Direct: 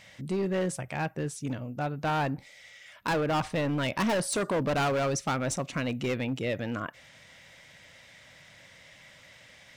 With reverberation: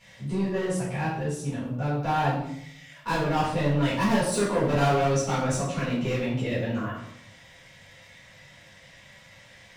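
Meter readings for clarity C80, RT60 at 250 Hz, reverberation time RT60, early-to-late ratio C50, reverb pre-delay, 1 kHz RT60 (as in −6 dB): 6.0 dB, 0.95 s, 0.75 s, 2.5 dB, 4 ms, 0.70 s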